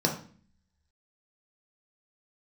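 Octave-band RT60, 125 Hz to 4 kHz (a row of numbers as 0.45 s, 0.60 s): 0.75 s, 0.80 s, 0.45 s, 0.40 s, 0.45 s, 0.40 s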